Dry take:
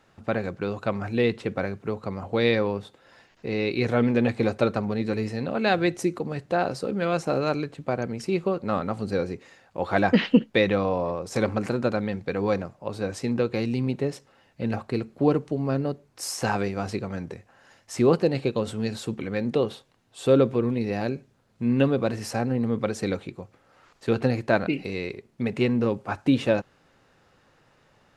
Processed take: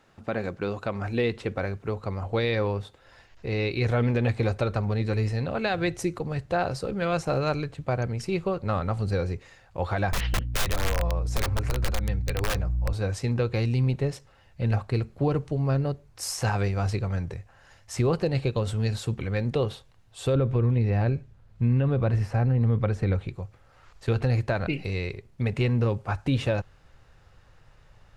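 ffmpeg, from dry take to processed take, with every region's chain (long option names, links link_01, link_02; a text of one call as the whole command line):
ffmpeg -i in.wav -filter_complex "[0:a]asettb=1/sr,asplit=3[link_01][link_02][link_03];[link_01]atrim=end=10.124[link_04];[link_02]atrim=start=10.12:end=12.93,asetpts=PTS-STARTPTS,afade=type=in:duration=0.004:curve=qsin,afade=type=out:start_time=2.806:duration=0.004:curve=qsin,aeval=exprs='val(0)+0.0224*(sin(2*PI*60*n/s)+sin(2*PI*2*60*n/s)/2+sin(2*PI*3*60*n/s)/3+sin(2*PI*4*60*n/s)/4+sin(2*PI*5*60*n/s)/5)':channel_layout=same,flanger=delay=5.8:depth=1.9:regen=-30:speed=1.1:shape=sinusoidal,aeval=exprs='(mod(10.6*val(0)+1,2)-1)/10.6':channel_layout=same[link_05];[link_03]atrim=start=12.926[link_06];[link_04][link_05]acrossfade=duration=0.004:curve1=hsin:curve2=qsin[link_07];[link_07][link_06]acrossfade=duration=0.004:curve1=qsin:curve2=hsin,asettb=1/sr,asplit=3[link_08][link_09][link_10];[link_08]atrim=end=20.354[link_11];[link_09]atrim=start=20.35:end=23.28,asetpts=PTS-STARTPTS,afade=type=in:duration=0.004:curve=qsin,afade=type=out:start_time=2.926:duration=0.004:curve=qsin,acrossover=split=2600[link_12][link_13];[link_13]acompressor=threshold=-47dB:ratio=4:attack=1:release=60[link_14];[link_12][link_14]amix=inputs=2:normalize=0,bass=frequency=250:gain=4,treble=frequency=4000:gain=-6[link_15];[link_10]atrim=start=23.276[link_16];[link_11][link_15]acrossfade=duration=0.004:curve1=hsin:curve2=qsin[link_17];[link_17][link_16]acrossfade=duration=0.004:curve1=qsin:curve2=hsin,asubboost=boost=11.5:cutoff=71,alimiter=limit=-15.5dB:level=0:latency=1:release=107" out.wav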